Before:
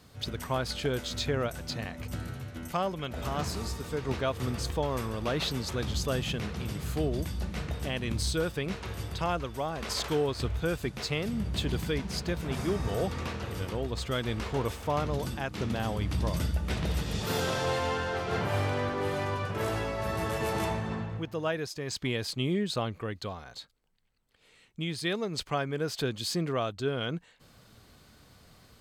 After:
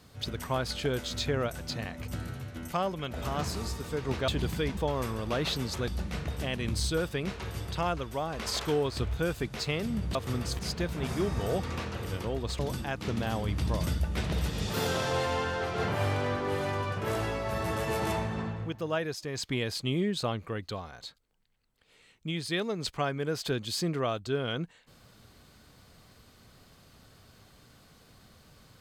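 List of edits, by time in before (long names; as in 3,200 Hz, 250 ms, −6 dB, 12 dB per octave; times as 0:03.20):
0:04.28–0:04.72: swap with 0:11.58–0:12.07
0:05.83–0:07.31: remove
0:14.07–0:15.12: remove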